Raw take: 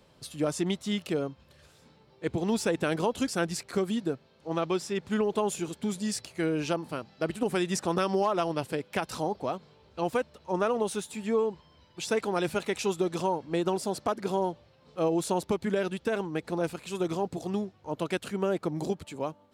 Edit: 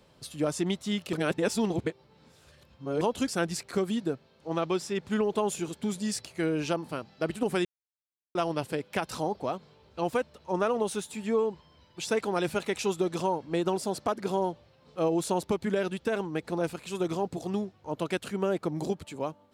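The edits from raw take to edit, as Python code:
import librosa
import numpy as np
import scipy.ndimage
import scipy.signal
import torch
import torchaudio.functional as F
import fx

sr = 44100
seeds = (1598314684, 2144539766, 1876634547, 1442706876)

y = fx.edit(x, sr, fx.reverse_span(start_s=1.13, length_s=1.88),
    fx.silence(start_s=7.65, length_s=0.7), tone=tone)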